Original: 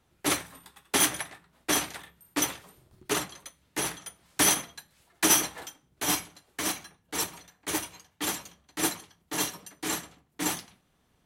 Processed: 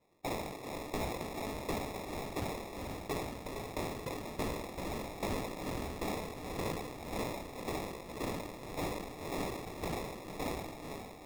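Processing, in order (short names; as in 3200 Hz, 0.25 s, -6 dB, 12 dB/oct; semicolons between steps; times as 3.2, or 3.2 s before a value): Butterworth band-stop 1400 Hz, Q 4.4; harmonic-percussive split harmonic -8 dB; on a send: diffused feedback echo 0.457 s, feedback 51%, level -12.5 dB; on the sum: compressor 6:1, threshold -35 dBFS, peak gain reduction 15 dB; HPF 320 Hz; sample-and-hold 29×; soft clip -29.5 dBFS, distortion -17 dB; sustainer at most 41 dB/s; gain +2 dB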